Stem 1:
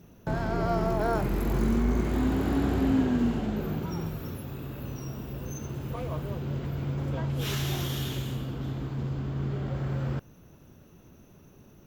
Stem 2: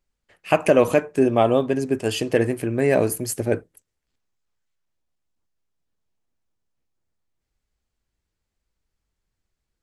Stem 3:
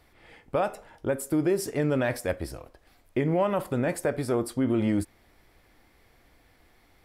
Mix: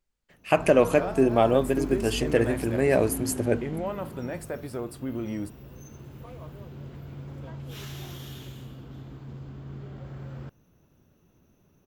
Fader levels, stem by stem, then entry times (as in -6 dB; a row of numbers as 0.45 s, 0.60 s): -9.0 dB, -3.0 dB, -7.5 dB; 0.30 s, 0.00 s, 0.45 s